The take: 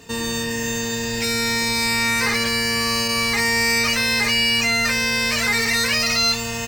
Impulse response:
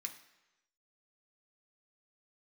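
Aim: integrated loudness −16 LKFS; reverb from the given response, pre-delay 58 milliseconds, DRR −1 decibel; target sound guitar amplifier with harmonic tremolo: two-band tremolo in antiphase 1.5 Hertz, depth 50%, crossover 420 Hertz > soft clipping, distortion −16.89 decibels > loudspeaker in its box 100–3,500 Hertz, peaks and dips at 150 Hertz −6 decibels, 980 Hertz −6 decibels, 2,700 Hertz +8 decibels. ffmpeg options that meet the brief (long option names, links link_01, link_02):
-filter_complex "[0:a]asplit=2[link_01][link_02];[1:a]atrim=start_sample=2205,adelay=58[link_03];[link_02][link_03]afir=irnorm=-1:irlink=0,volume=4dB[link_04];[link_01][link_04]amix=inputs=2:normalize=0,acrossover=split=420[link_05][link_06];[link_05]aeval=exprs='val(0)*(1-0.5/2+0.5/2*cos(2*PI*1.5*n/s))':channel_layout=same[link_07];[link_06]aeval=exprs='val(0)*(1-0.5/2-0.5/2*cos(2*PI*1.5*n/s))':channel_layout=same[link_08];[link_07][link_08]amix=inputs=2:normalize=0,asoftclip=threshold=-12.5dB,highpass=100,equalizer=frequency=150:width_type=q:width=4:gain=-6,equalizer=frequency=980:width_type=q:width=4:gain=-6,equalizer=frequency=2700:width_type=q:width=4:gain=8,lowpass=frequency=3500:width=0.5412,lowpass=frequency=3500:width=1.3066,volume=1.5dB"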